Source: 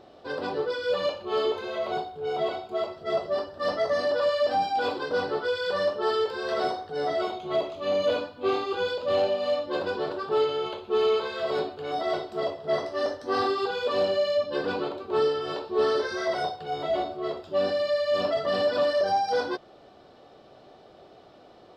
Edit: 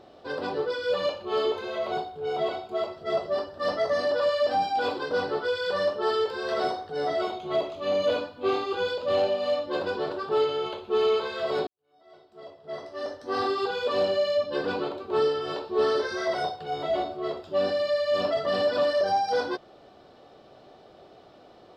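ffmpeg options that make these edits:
ffmpeg -i in.wav -filter_complex "[0:a]asplit=2[link_01][link_02];[link_01]atrim=end=11.67,asetpts=PTS-STARTPTS,afade=type=out:start_time=11.666:duration=0.004:curve=hsin[link_03];[link_02]atrim=start=11.67,asetpts=PTS-STARTPTS,afade=type=in:duration=1.92:curve=qua[link_04];[link_03][link_04]concat=n=2:v=0:a=1" out.wav

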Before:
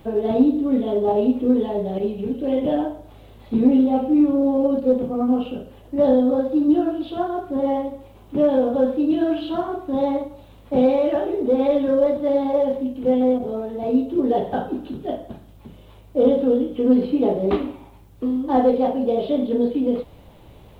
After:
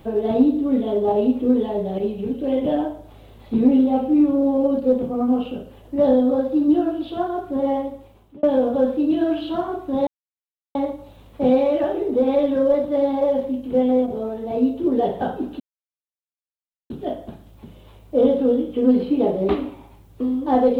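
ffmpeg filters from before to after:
ffmpeg -i in.wav -filter_complex "[0:a]asplit=4[link_01][link_02][link_03][link_04];[link_01]atrim=end=8.43,asetpts=PTS-STARTPTS,afade=type=out:start_time=7.71:duration=0.72:curve=qsin[link_05];[link_02]atrim=start=8.43:end=10.07,asetpts=PTS-STARTPTS,afade=type=in:duration=0.004:curve=hsin,afade=type=out:start_time=1.636:duration=0.004:curve=hsin,apad=pad_dur=0.68[link_06];[link_03]atrim=start=10.07:end=14.92,asetpts=PTS-STARTPTS,afade=type=in:duration=0.004:curve=hsin,afade=type=out:start_time=4.846:duration=0.004:curve=hsin,apad=pad_dur=1.3[link_07];[link_04]atrim=start=14.92,asetpts=PTS-STARTPTS,afade=type=in:duration=0.004:curve=hsin[link_08];[link_05][link_06][link_07][link_08]concat=n=4:v=0:a=1" out.wav

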